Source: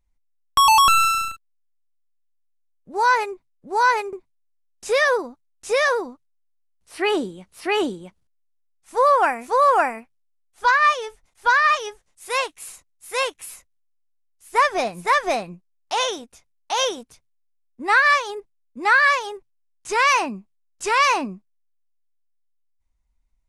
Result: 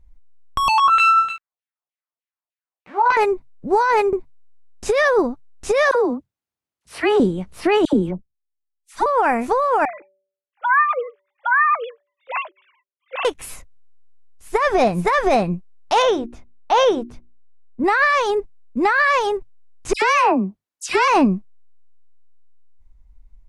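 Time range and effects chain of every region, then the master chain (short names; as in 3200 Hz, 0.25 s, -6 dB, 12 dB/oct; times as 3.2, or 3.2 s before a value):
0.68–3.17 zero-crossing step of -34 dBFS + LFO band-pass saw down 3.3 Hz 650–3100 Hz + doubler 15 ms -4 dB
5.91–7.2 dispersion lows, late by 45 ms, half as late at 1000 Hz + compressor 3:1, threshold -26 dBFS + HPF 78 Hz
7.85–9.06 expander -48 dBFS + dispersion lows, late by 80 ms, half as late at 1200 Hz
9.85–13.25 sine-wave speech + low shelf 320 Hz -7 dB + de-hum 192.4 Hz, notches 3
16.02–17.84 LPF 2200 Hz 6 dB/oct + notches 60/120/180/240/300/360 Hz
19.93–21.08 HPF 250 Hz 6 dB/oct + dispersion lows, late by 90 ms, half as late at 2100 Hz
whole clip: tilt -2.5 dB/oct; negative-ratio compressor -21 dBFS, ratio -1; maximiser +13 dB; gain -6.5 dB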